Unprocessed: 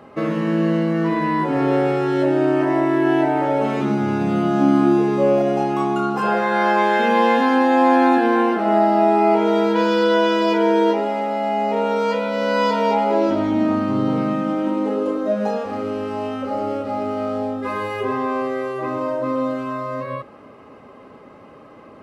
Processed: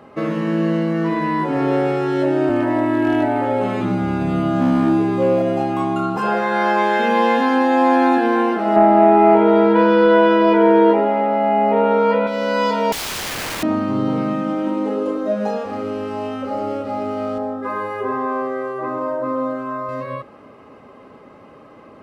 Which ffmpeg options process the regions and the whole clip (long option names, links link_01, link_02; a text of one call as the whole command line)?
ffmpeg -i in.wav -filter_complex "[0:a]asettb=1/sr,asplit=3[link_01][link_02][link_03];[link_01]atrim=end=2.494[link_04];[link_02]atrim=start=2.49:end=6.17,asetpts=PTS-STARTPTS,afade=type=in:duration=0.004:curve=qsin,afade=type=out:start_time=3.676:duration=0.004:curve=qsin,equalizer=frequency=5700:width_type=o:width=0.25:gain=-8.5,volume=10dB,asoftclip=hard,volume=-10dB,afreqshift=-24[link_05];[link_03]atrim=start=6.166[link_06];[link_04][link_05]acrossfade=duration=0.004:curve1=hsin:curve2=qsin[link_07];[link_07][link_06]acrossfade=duration=0.004:curve1=qsin:curve2=hsin,asettb=1/sr,asplit=3[link_08][link_09][link_10];[link_08]atrim=end=8.764[link_11];[link_09]atrim=start=8.76:end=12.27,asetpts=PTS-STARTPTS,afade=type=in:duration=0.004:curve=qsin,afade=type=out:start_time=3.506:duration=0.004:curve=qsin,lowpass=2100,acontrast=21[link_12];[link_10]atrim=start=12.266[link_13];[link_11][link_12]acrossfade=duration=0.004:curve1=hsin:curve2=qsin[link_14];[link_14][link_13]acrossfade=duration=0.004:curve1=qsin:curve2=hsin,asettb=1/sr,asplit=3[link_15][link_16][link_17];[link_15]atrim=end=12.924[link_18];[link_16]atrim=start=12.92:end=13.63,asetpts=PTS-STARTPTS,afade=type=in:duration=0.004:curve=qsin,afade=type=out:start_time=0.706:duration=0.004:curve=qsin,aeval=exprs='val(0)+0.0158*(sin(2*PI*60*n/s)+sin(2*PI*2*60*n/s)/2+sin(2*PI*3*60*n/s)/3+sin(2*PI*4*60*n/s)/4+sin(2*PI*5*60*n/s)/5)':channel_layout=same,aeval=exprs='(mod(11.9*val(0)+1,2)-1)/11.9':channel_layout=same[link_19];[link_17]atrim=start=13.626[link_20];[link_18][link_19]acrossfade=duration=0.004:curve1=hsin:curve2=qsin[link_21];[link_21][link_20]acrossfade=duration=0.004:curve1=qsin:curve2=hsin,asettb=1/sr,asplit=3[link_22][link_23][link_24];[link_22]atrim=end=17.384[link_25];[link_23]atrim=start=17.38:end=19.89,asetpts=PTS-STARTPTS,afade=type=in:duration=0.004:curve=qsin,afade=type=out:start_time=2.506:duration=0.004:curve=qsin,highpass=frequency=170:poles=1,highshelf=frequency=2000:width_type=q:width=1.5:gain=-7.5[link_26];[link_24]atrim=start=19.886[link_27];[link_25][link_26]acrossfade=duration=0.004:curve1=hsin:curve2=qsin[link_28];[link_28][link_27]acrossfade=duration=0.004:curve1=qsin:curve2=hsin" out.wav